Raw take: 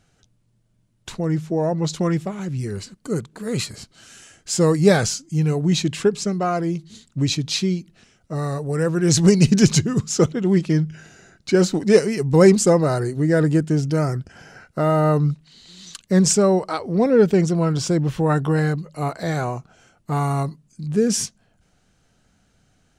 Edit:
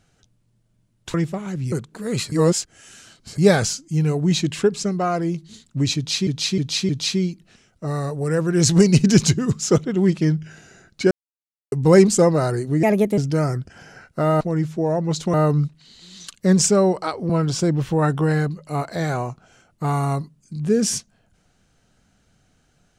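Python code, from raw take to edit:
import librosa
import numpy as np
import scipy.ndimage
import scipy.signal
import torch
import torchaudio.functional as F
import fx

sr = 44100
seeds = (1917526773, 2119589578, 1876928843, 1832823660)

y = fx.edit(x, sr, fx.move(start_s=1.14, length_s=0.93, to_s=15.0),
    fx.cut(start_s=2.65, length_s=0.48),
    fx.reverse_span(start_s=3.73, length_s=1.06),
    fx.repeat(start_s=7.37, length_s=0.31, count=4),
    fx.silence(start_s=11.59, length_s=0.61),
    fx.speed_span(start_s=13.31, length_s=0.46, speed=1.33),
    fx.cut(start_s=16.96, length_s=0.61), tone=tone)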